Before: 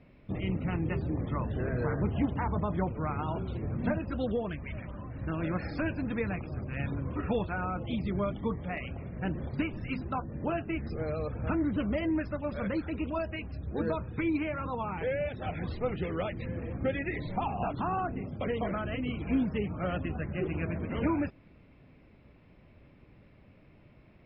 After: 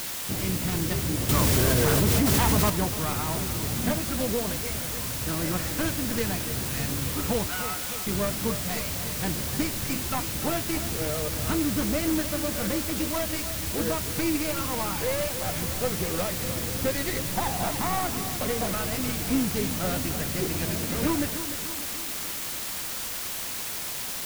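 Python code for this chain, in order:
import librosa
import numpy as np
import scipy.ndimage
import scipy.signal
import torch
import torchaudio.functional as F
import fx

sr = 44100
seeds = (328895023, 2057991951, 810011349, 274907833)

p1 = fx.tracing_dist(x, sr, depth_ms=0.22)
p2 = fx.highpass(p1, sr, hz=950.0, slope=12, at=(7.47, 8.07))
p3 = fx.quant_dither(p2, sr, seeds[0], bits=6, dither='triangular')
p4 = p3 + fx.echo_feedback(p3, sr, ms=298, feedback_pct=57, wet_db=-11.0, dry=0)
p5 = fx.env_flatten(p4, sr, amount_pct=100, at=(1.29, 2.7))
y = F.gain(torch.from_numpy(p5), 2.5).numpy()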